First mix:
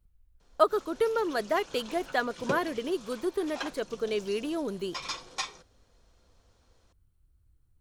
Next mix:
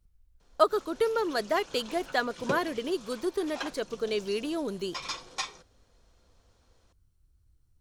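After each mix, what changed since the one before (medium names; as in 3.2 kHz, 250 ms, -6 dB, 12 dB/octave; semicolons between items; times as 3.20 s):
speech: add peaking EQ 5.6 kHz +8.5 dB 0.89 oct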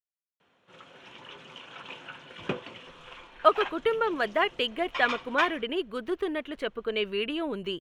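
speech: entry +2.85 s; master: add FFT filter 550 Hz 0 dB, 3 kHz +8 dB, 4.6 kHz -13 dB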